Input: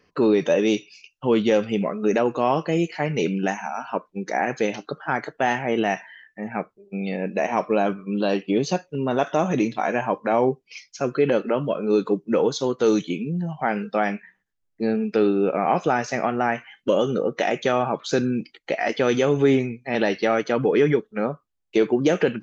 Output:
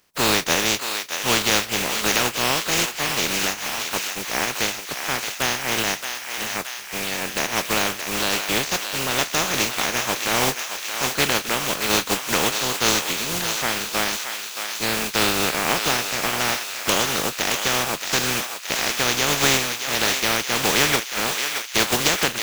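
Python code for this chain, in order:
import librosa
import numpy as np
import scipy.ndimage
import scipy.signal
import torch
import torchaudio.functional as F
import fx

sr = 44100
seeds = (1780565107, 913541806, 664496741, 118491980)

y = fx.spec_flatten(x, sr, power=0.22)
y = fx.echo_thinned(y, sr, ms=623, feedback_pct=73, hz=800.0, wet_db=-6.0)
y = y * 10.0 ** (-1.0 / 20.0)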